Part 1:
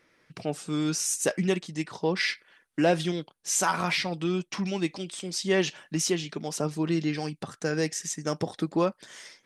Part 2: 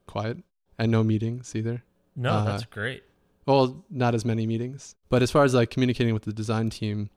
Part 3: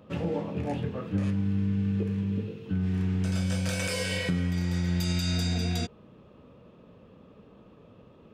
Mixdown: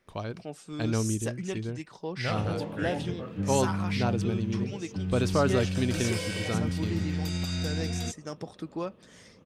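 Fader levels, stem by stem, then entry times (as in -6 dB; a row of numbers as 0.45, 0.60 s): -9.0, -6.0, -3.5 dB; 0.00, 0.00, 2.25 s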